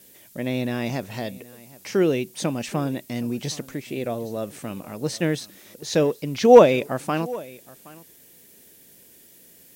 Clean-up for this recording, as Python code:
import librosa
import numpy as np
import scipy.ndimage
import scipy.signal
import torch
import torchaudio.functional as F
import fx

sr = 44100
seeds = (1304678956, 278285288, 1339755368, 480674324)

y = fx.noise_reduce(x, sr, print_start_s=8.06, print_end_s=8.56, reduce_db=18.0)
y = fx.fix_echo_inverse(y, sr, delay_ms=770, level_db=-21.0)